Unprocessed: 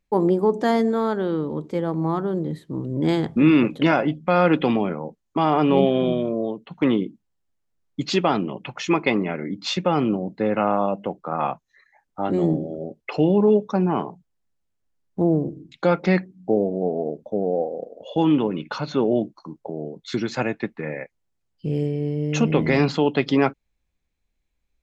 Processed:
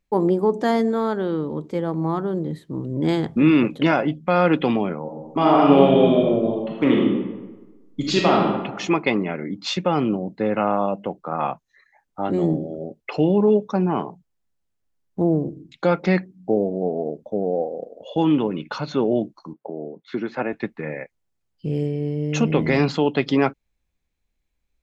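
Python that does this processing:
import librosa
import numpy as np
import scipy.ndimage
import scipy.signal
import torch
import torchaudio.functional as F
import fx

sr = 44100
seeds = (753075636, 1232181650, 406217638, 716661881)

y = fx.reverb_throw(x, sr, start_s=5.02, length_s=3.4, rt60_s=1.2, drr_db=-2.0)
y = fx.bandpass_edges(y, sr, low_hz=210.0, high_hz=2000.0, at=(19.53, 20.53))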